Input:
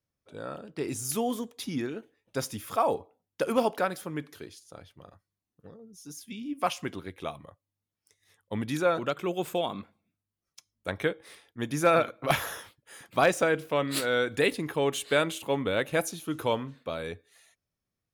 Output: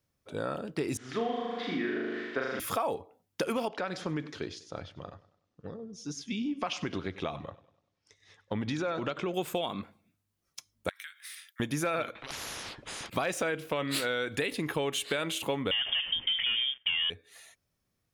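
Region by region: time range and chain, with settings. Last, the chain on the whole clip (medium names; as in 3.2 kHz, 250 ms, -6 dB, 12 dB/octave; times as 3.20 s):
0.97–2.60 s: zero-crossing glitches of -32.5 dBFS + cabinet simulation 360–2800 Hz, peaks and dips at 530 Hz -4 dB, 880 Hz -8 dB, 1.8 kHz +4 dB, 2.6 kHz -8 dB + flutter echo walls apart 6.7 m, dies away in 1.2 s
3.68–9.34 s: low-pass 6.1 kHz 24 dB/octave + compression 2.5:1, threshold -34 dBFS + modulated delay 98 ms, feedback 43%, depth 67 cents, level -18.5 dB
10.89–11.60 s: steep high-pass 1.4 kHz + treble shelf 8.6 kHz +11 dB + compression 8:1, threshold -47 dBFS
12.15–13.10 s: compression 2:1, threshold -50 dBFS + tape spacing loss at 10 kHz 30 dB + spectrum-flattening compressor 10:1
15.71–17.10 s: peaking EQ 2.4 kHz -11.5 dB 0.83 oct + waveshaping leveller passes 3 + frequency inversion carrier 3.4 kHz
whole clip: dynamic bell 2.7 kHz, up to +5 dB, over -42 dBFS, Q 0.88; peak limiter -16.5 dBFS; compression 5:1, threshold -36 dBFS; trim +7 dB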